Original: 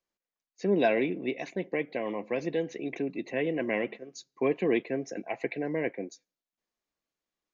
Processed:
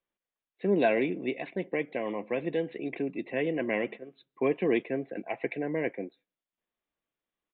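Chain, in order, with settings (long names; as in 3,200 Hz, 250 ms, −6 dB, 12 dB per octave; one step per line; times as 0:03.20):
downsampling to 8,000 Hz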